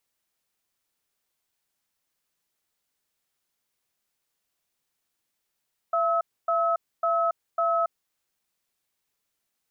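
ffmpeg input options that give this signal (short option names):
-f lavfi -i "aevalsrc='0.0668*(sin(2*PI*674*t)+sin(2*PI*1290*t))*clip(min(mod(t,0.55),0.28-mod(t,0.55))/0.005,0,1)':d=2.03:s=44100"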